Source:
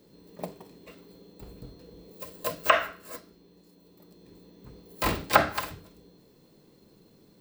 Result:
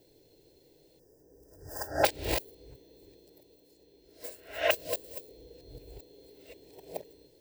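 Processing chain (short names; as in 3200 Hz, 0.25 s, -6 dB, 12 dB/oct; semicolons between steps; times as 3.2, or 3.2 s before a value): whole clip reversed; spectral delete 0.99–2.04, 1900–4700 Hz; fixed phaser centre 490 Hz, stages 4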